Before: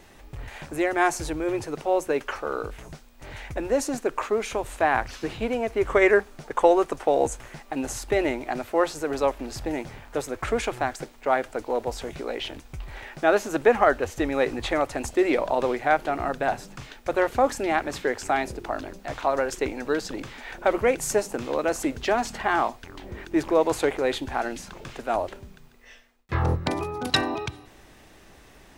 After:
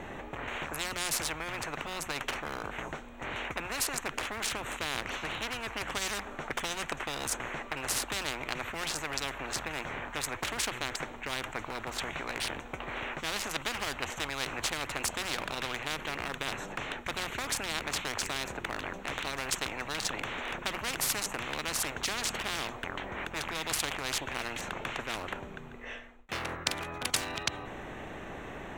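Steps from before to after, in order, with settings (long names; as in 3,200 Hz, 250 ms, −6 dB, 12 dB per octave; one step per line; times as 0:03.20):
adaptive Wiener filter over 9 samples
every bin compressed towards the loudest bin 10 to 1
level −3 dB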